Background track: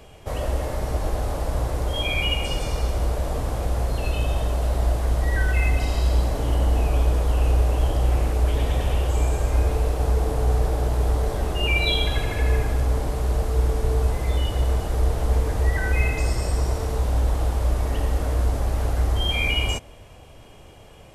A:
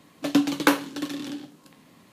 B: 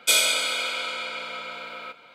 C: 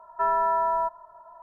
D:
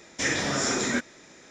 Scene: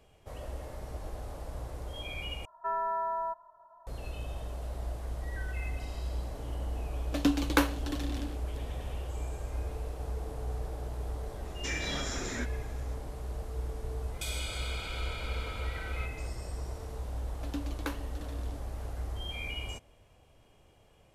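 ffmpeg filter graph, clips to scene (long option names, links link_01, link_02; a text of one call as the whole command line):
ffmpeg -i bed.wav -i cue0.wav -i cue1.wav -i cue2.wav -i cue3.wav -filter_complex "[1:a]asplit=2[link_01][link_02];[0:a]volume=-15.5dB[link_03];[4:a]alimiter=limit=-19dB:level=0:latency=1:release=206[link_04];[2:a]acompressor=threshold=-34dB:ratio=4:attack=12:release=42:knee=1:detection=peak[link_05];[link_03]asplit=2[link_06][link_07];[link_06]atrim=end=2.454[link_08];[3:a]atrim=end=1.42,asetpts=PTS-STARTPTS,volume=-8.5dB[link_09];[link_07]atrim=start=3.866[link_10];[link_01]atrim=end=2.12,asetpts=PTS-STARTPTS,volume=-6dB,afade=type=in:duration=0.004:curve=hsin,afade=type=out:start_time=2.116:duration=0.004:curve=hsin,adelay=304290S[link_11];[link_04]atrim=end=1.5,asetpts=PTS-STARTPTS,volume=-8.5dB,afade=type=in:duration=0.004:curve=hsin,afade=type=out:start_time=1.496:duration=0.004:curve=hsin,adelay=11450[link_12];[link_05]atrim=end=2.14,asetpts=PTS-STARTPTS,volume=-8dB,afade=type=in:duration=0.004:curve=hsin,afade=type=out:start_time=2.136:duration=0.004:curve=hsin,adelay=14140[link_13];[link_02]atrim=end=2.12,asetpts=PTS-STARTPTS,volume=-18dB,afade=type=in:duration=0.004:curve=hsin,afade=type=out:start_time=2.116:duration=0.004:curve=hsin,adelay=17190[link_14];[link_08][link_09]acrossfade=duration=0.004:curve1=hsin:curve2=hsin[link_15];[link_15][link_10]acrossfade=duration=0.004:curve1=hsin:curve2=hsin[link_16];[link_16][link_11][link_12][link_13][link_14]amix=inputs=5:normalize=0" out.wav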